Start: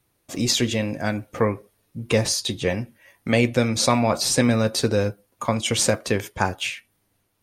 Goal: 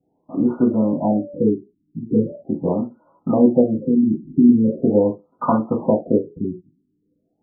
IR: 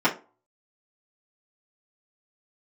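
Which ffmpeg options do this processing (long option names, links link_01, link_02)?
-filter_complex "[0:a]asettb=1/sr,asplit=3[link_01][link_02][link_03];[link_01]atrim=end=0.714[link_04];[link_02]atrim=start=0.71:end=2.35,asetpts=PTS-STARTPTS,afade=type=in:duration=0.004:curve=qsin,afade=type=out:start_time=1.636:duration=0.004:curve=qsin,aeval=exprs='val(0)+0.02*sin(2*PI*580*n/s)':channel_layout=same[link_05];[link_03]atrim=start=2.346[link_06];[link_04][link_05]acrossfade=duration=0.004:curve1=hsin:curve2=qsin[link_07];[link_07][link_06]acrossfade=duration=0.004:curve1=qsin:curve2=hsin[link_08];[1:a]atrim=start_sample=2205,atrim=end_sample=3969[link_09];[link_08][link_09]afir=irnorm=-1:irlink=0,afftfilt=real='re*lt(b*sr/1024,380*pow(1500/380,0.5+0.5*sin(2*PI*0.41*pts/sr)))':imag='im*lt(b*sr/1024,380*pow(1500/380,0.5+0.5*sin(2*PI*0.41*pts/sr)))':win_size=1024:overlap=0.75,volume=-11dB"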